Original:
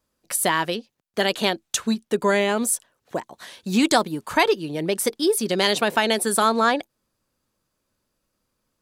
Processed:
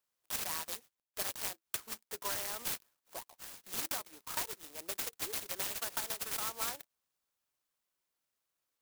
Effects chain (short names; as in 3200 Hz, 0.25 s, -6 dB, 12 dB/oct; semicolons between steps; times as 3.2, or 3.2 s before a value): HPF 1300 Hz 12 dB/oct; compressor 6:1, threshold -27 dBFS, peak gain reduction 10.5 dB; clock jitter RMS 0.15 ms; gain -6 dB